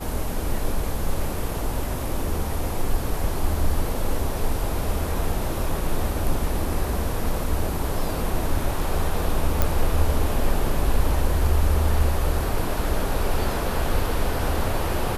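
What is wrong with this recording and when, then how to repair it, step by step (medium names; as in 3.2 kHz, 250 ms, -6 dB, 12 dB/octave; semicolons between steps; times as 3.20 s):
9.62 s: pop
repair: de-click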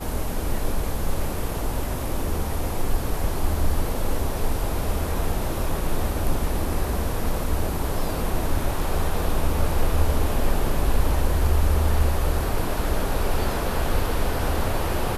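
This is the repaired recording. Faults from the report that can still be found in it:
nothing left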